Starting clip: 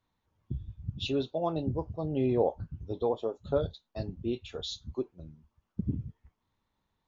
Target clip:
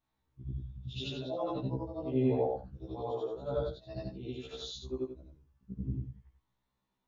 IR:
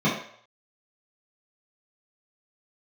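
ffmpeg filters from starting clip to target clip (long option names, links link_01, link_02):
-af "afftfilt=real='re':imag='-im':win_size=8192:overlap=0.75,afftfilt=real='re*1.73*eq(mod(b,3),0)':imag='im*1.73*eq(mod(b,3),0)':win_size=2048:overlap=0.75,volume=3dB"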